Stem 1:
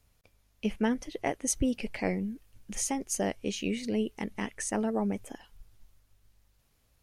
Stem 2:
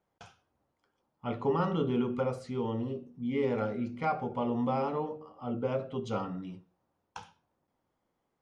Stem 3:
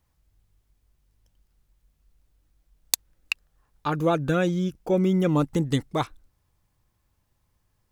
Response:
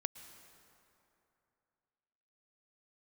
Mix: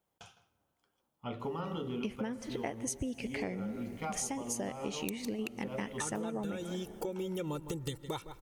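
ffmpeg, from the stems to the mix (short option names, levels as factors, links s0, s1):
-filter_complex "[0:a]highpass=52,adelay=1400,volume=0.891,asplit=2[s0][s1];[s1]volume=0.668[s2];[1:a]volume=0.501,asplit=4[s3][s4][s5][s6];[s4]volume=0.376[s7];[s5]volume=0.251[s8];[2:a]aecho=1:1:2.2:0.66,adelay=2150,volume=0.708,asplit=3[s9][s10][s11];[s10]volume=0.1[s12];[s11]volume=0.075[s13];[s6]apad=whole_len=371411[s14];[s0][s14]sidechaingate=range=0.0224:threshold=0.00126:ratio=16:detection=peak[s15];[s3][s9]amix=inputs=2:normalize=0,aexciter=amount=1.3:drive=9.2:freq=2700,acompressor=threshold=0.0158:ratio=3,volume=1[s16];[3:a]atrim=start_sample=2205[s17];[s2][s7][s12]amix=inputs=3:normalize=0[s18];[s18][s17]afir=irnorm=-1:irlink=0[s19];[s8][s13]amix=inputs=2:normalize=0,aecho=0:1:159:1[s20];[s15][s16][s19][s20]amix=inputs=4:normalize=0,acompressor=threshold=0.0224:ratio=12"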